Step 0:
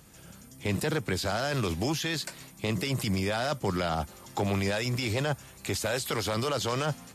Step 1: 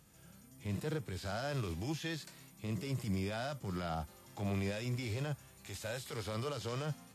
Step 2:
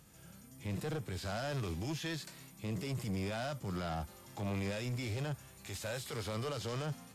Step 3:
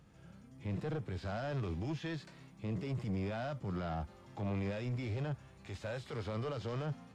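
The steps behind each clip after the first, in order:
harmonic and percussive parts rebalanced percussive −14 dB; level −6 dB
soft clipping −35.5 dBFS, distortion −14 dB; level +3 dB
head-to-tape spacing loss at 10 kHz 22 dB; level +1 dB

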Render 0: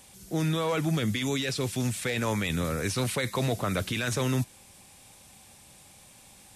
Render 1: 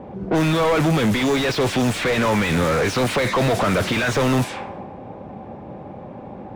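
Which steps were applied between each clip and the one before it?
low-pass that shuts in the quiet parts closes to 400 Hz, open at −24 dBFS
mid-hump overdrive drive 36 dB, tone 1,200 Hz, clips at −16.5 dBFS
level +6 dB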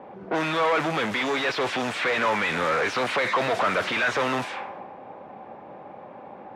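resonant band-pass 1,500 Hz, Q 0.62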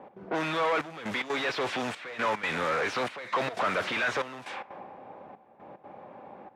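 gate pattern "x.xxxxxxxx...x" 185 BPM −12 dB
level −4.5 dB

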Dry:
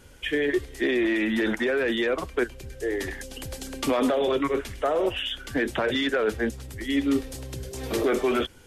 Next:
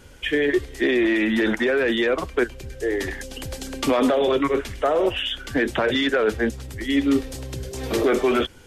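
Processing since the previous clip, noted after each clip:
parametric band 11,000 Hz −4 dB 0.76 octaves
level +4 dB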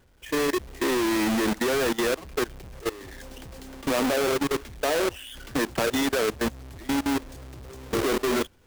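each half-wave held at its own peak
output level in coarse steps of 18 dB
level −5.5 dB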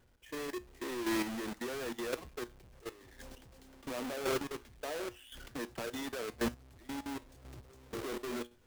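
tuned comb filter 120 Hz, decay 0.25 s, harmonics all, mix 50%
square-wave tremolo 0.94 Hz, depth 60%, duty 15%
level −3 dB

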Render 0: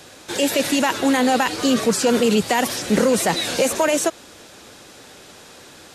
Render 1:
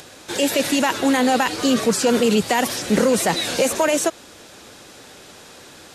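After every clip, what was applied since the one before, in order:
upward compression, threshold −40 dBFS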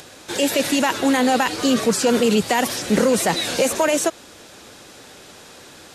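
no processing that can be heard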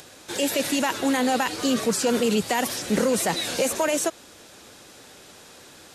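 high-shelf EQ 7,800 Hz +4 dB
level −5 dB

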